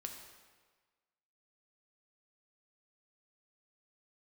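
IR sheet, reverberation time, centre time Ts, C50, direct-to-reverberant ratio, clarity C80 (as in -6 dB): 1.4 s, 39 ms, 5.0 dB, 2.5 dB, 7.0 dB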